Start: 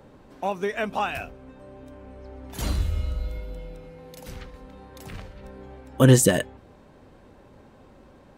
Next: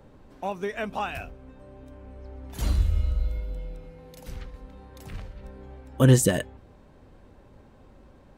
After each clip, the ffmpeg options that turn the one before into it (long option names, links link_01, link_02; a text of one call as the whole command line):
ffmpeg -i in.wav -af "lowshelf=frequency=87:gain=10,volume=-4dB" out.wav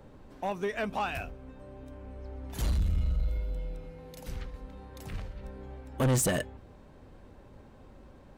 ffmpeg -i in.wav -af "asoftclip=type=tanh:threshold=-22.5dB" out.wav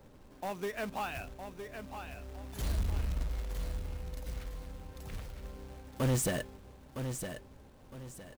ffmpeg -i in.wav -af "acrusher=bits=3:mode=log:mix=0:aa=0.000001,aecho=1:1:961|1922|2883|3844:0.398|0.127|0.0408|0.013,volume=-5dB" out.wav